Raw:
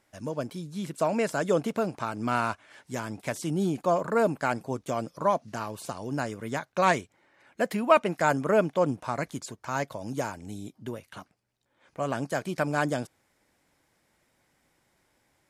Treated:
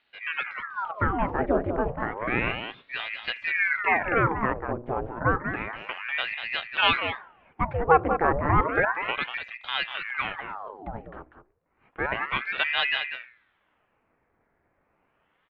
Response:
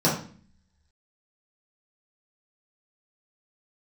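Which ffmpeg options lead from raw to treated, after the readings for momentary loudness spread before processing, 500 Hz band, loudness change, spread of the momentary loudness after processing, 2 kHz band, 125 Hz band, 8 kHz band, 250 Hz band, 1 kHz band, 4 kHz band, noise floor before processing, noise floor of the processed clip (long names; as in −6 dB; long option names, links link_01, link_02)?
14 LU, −2.5 dB, +2.0 dB, 12 LU, +8.5 dB, +1.0 dB, below −35 dB, −3.0 dB, +2.5 dB, +12.0 dB, −72 dBFS, −71 dBFS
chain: -filter_complex "[0:a]lowpass=frequency=1800:width=0.5412,lowpass=frequency=1800:width=1.3066,bandreject=frequency=60:width_type=h:width=6,bandreject=frequency=120:width_type=h:width=6,bandreject=frequency=180:width_type=h:width=6,bandreject=frequency=240:width_type=h:width=6,bandreject=frequency=300:width_type=h:width=6,bandreject=frequency=360:width_type=h:width=6,bandreject=frequency=420:width_type=h:width=6,bandreject=frequency=480:width_type=h:width=6,bandreject=frequency=540:width_type=h:width=6,aecho=1:1:194:0.376,asplit=2[link_01][link_02];[1:a]atrim=start_sample=2205,asetrate=37485,aresample=44100,lowpass=1300[link_03];[link_02][link_03]afir=irnorm=-1:irlink=0,volume=-37.5dB[link_04];[link_01][link_04]amix=inputs=2:normalize=0,aeval=exprs='val(0)*sin(2*PI*1200*n/s+1200*0.9/0.31*sin(2*PI*0.31*n/s))':channel_layout=same,volume=4dB"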